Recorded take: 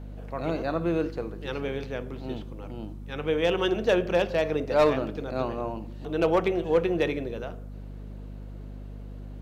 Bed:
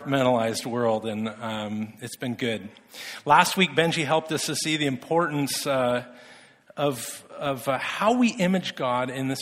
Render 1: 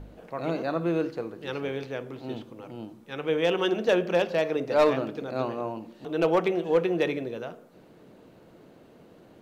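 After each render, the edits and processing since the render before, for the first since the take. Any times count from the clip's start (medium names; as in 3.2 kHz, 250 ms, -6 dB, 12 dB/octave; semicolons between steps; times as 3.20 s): de-hum 50 Hz, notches 5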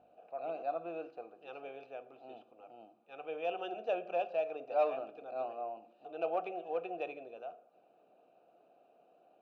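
vowel filter a; comb of notches 1.1 kHz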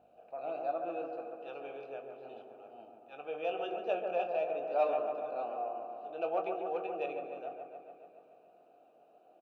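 doubling 21 ms -8.5 dB; on a send: feedback echo behind a low-pass 142 ms, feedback 70%, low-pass 1.7 kHz, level -5 dB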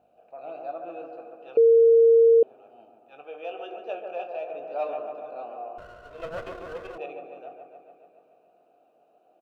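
1.57–2.43 s: bleep 459 Hz -12.5 dBFS; 3.23–4.54 s: peaking EQ 160 Hz -11 dB 0.88 oct; 5.78–6.98 s: comb filter that takes the minimum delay 1.9 ms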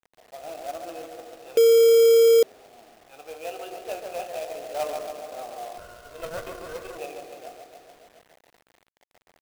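companded quantiser 4-bit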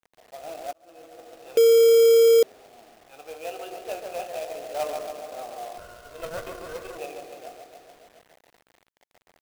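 0.73–1.54 s: fade in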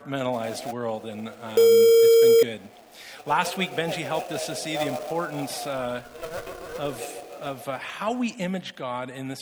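add bed -6 dB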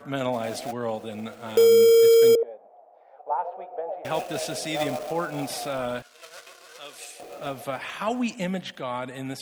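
2.35–4.05 s: Butterworth band-pass 680 Hz, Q 1.8; 6.02–7.20 s: band-pass filter 5.2 kHz, Q 0.6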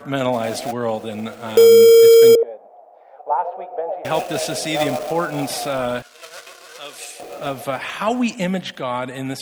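trim +7 dB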